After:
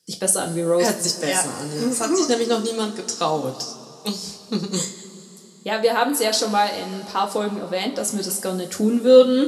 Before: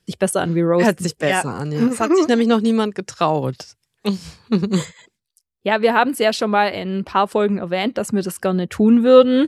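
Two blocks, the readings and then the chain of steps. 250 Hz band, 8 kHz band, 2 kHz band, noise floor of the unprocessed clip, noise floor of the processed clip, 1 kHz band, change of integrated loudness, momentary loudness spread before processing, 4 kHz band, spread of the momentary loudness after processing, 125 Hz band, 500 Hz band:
-6.0 dB, +8.5 dB, -5.5 dB, -77 dBFS, -44 dBFS, -3.5 dB, -3.0 dB, 10 LU, +2.5 dB, 10 LU, -8.0 dB, -2.5 dB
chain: HPF 150 Hz 12 dB/oct; resonant high shelf 3700 Hz +11 dB, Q 1.5; two-slope reverb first 0.26 s, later 3.7 s, from -20 dB, DRR 1.5 dB; gain -6 dB

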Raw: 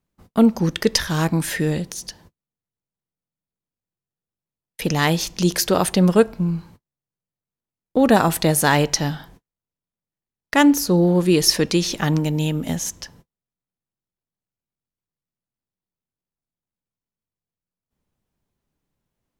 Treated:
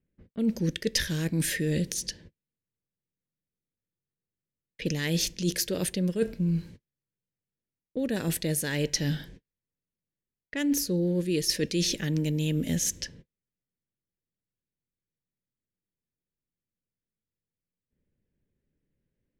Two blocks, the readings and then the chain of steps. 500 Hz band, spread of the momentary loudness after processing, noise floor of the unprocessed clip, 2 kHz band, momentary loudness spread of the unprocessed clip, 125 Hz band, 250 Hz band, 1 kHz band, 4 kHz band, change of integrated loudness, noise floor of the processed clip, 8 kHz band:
-11.5 dB, 8 LU, under -85 dBFS, -10.5 dB, 11 LU, -7.5 dB, -10.0 dB, -25.5 dB, -7.5 dB, -9.5 dB, under -85 dBFS, -6.0 dB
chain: reverse; compressor 16:1, threshold -23 dBFS, peak gain reduction 15.5 dB; reverse; band shelf 960 Hz -15.5 dB 1.2 oct; low-pass opened by the level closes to 1800 Hz, open at -27 dBFS

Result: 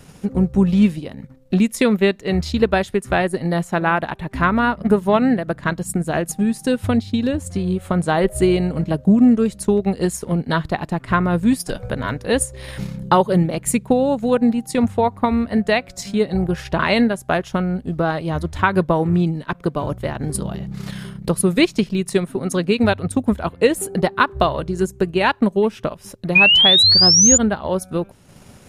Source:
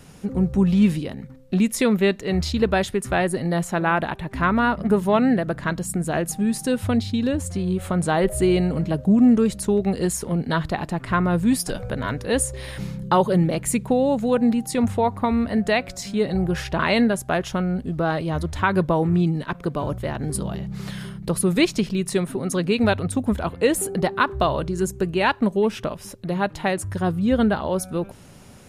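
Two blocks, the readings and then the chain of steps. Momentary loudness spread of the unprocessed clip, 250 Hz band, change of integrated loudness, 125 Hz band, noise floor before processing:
8 LU, +2.5 dB, +4.5 dB, +2.0 dB, -43 dBFS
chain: painted sound rise, 26.35–27.38, 2400–7100 Hz -14 dBFS; transient shaper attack +3 dB, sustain -7 dB; gain +2 dB

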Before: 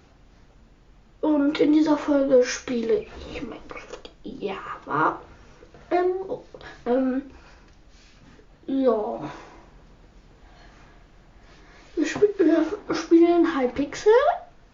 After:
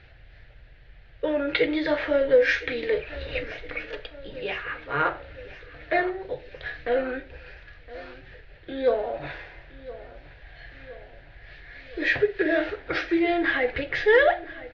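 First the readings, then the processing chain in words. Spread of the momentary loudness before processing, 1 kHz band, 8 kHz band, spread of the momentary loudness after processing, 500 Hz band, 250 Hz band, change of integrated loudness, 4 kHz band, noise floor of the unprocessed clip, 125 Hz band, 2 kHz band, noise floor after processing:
18 LU, -3.0 dB, n/a, 23 LU, -1.5 dB, -8.5 dB, -2.5 dB, +3.0 dB, -54 dBFS, +0.5 dB, +9.0 dB, -50 dBFS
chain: EQ curve 120 Hz 0 dB, 220 Hz -19 dB, 610 Hz -2 dB, 1100 Hz -15 dB, 1700 Hz +7 dB, 4300 Hz -3 dB, 6900 Hz -29 dB; on a send: feedback echo 1.015 s, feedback 58%, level -17.5 dB; on the sum: gain +4.5 dB

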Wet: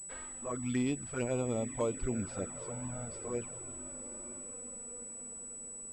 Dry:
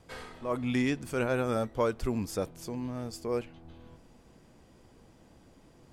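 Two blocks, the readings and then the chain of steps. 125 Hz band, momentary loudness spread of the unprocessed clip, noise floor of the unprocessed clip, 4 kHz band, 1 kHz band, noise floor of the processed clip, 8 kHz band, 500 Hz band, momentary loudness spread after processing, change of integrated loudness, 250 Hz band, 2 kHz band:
-3.0 dB, 9 LU, -59 dBFS, -8.0 dB, -7.5 dB, -46 dBFS, +11.5 dB, -5.0 dB, 9 LU, -5.5 dB, -4.0 dB, -8.5 dB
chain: diffused feedback echo 0.94 s, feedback 51%, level -12 dB; envelope flanger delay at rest 5.4 ms, full sweep at -24.5 dBFS; pulse-width modulation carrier 7900 Hz; gain -3 dB

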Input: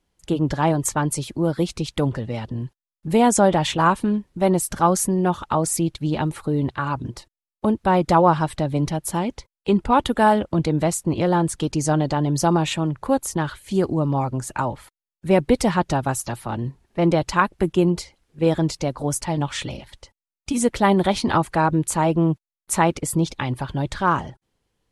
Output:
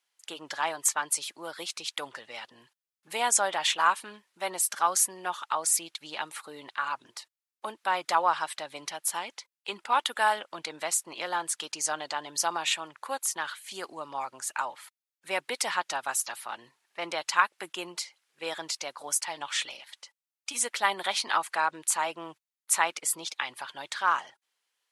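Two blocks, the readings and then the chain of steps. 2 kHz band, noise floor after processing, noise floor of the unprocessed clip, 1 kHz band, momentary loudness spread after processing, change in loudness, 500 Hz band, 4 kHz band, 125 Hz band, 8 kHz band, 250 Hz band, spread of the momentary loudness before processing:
-1.5 dB, under -85 dBFS, under -85 dBFS, -7.0 dB, 15 LU, -8.0 dB, -15.5 dB, 0.0 dB, -36.5 dB, 0.0 dB, -27.0 dB, 11 LU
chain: HPF 1300 Hz 12 dB/oct

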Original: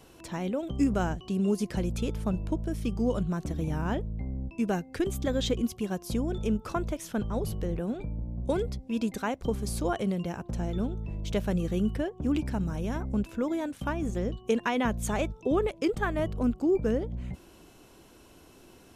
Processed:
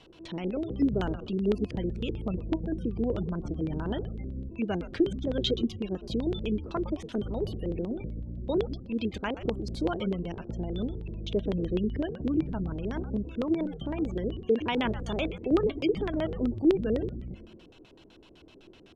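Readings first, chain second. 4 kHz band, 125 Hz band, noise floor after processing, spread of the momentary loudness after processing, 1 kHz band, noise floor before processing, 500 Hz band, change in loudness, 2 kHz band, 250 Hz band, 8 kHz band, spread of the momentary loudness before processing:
+2.5 dB, -2.0 dB, -55 dBFS, 8 LU, -4.0 dB, -55 dBFS, +0.5 dB, -0.5 dB, -3.5 dB, 0.0 dB, under -10 dB, 6 LU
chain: high shelf 4400 Hz +6.5 dB; resonator 320 Hz, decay 0.18 s, harmonics all, mix 50%; on a send: frequency-shifting echo 0.111 s, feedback 46%, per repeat -140 Hz, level -11 dB; on the sum: spectral gate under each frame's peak -30 dB strong; LFO low-pass square 7.9 Hz 410–3400 Hz; gain +2 dB

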